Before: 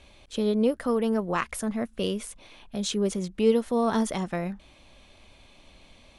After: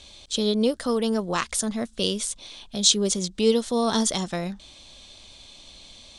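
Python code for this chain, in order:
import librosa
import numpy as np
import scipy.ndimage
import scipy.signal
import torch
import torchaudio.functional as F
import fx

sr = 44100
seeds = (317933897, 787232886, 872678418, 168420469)

y = fx.band_shelf(x, sr, hz=5400.0, db=13.5, octaves=1.7)
y = y * librosa.db_to_amplitude(1.0)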